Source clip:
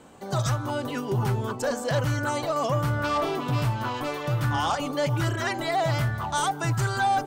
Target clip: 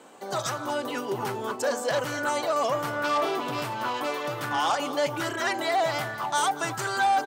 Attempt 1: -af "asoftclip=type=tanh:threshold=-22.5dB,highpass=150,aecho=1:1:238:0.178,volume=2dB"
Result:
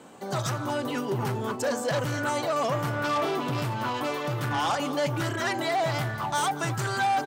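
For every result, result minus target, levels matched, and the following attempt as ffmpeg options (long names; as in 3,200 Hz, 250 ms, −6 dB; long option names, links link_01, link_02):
125 Hz band +10.5 dB; soft clipping: distortion +9 dB
-af "asoftclip=type=tanh:threshold=-22.5dB,highpass=330,aecho=1:1:238:0.178,volume=2dB"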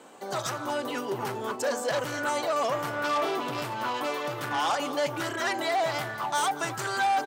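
soft clipping: distortion +9 dB
-af "asoftclip=type=tanh:threshold=-16.5dB,highpass=330,aecho=1:1:238:0.178,volume=2dB"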